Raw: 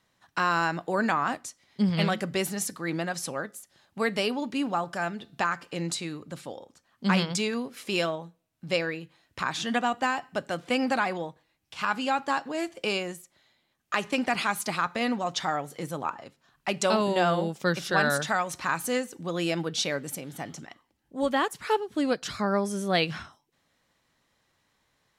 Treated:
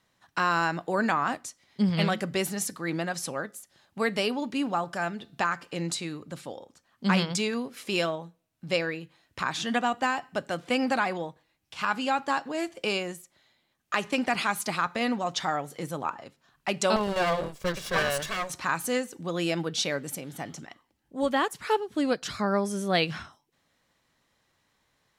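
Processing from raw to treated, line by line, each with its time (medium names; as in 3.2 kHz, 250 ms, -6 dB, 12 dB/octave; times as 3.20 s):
16.96–18.50 s: comb filter that takes the minimum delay 1.8 ms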